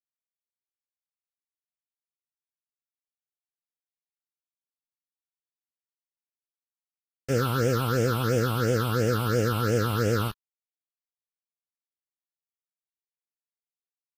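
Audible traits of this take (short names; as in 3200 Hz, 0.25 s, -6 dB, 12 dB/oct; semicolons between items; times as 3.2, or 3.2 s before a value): a quantiser's noise floor 6-bit, dither none; phasing stages 6, 2.9 Hz, lowest notch 460–1100 Hz; Vorbis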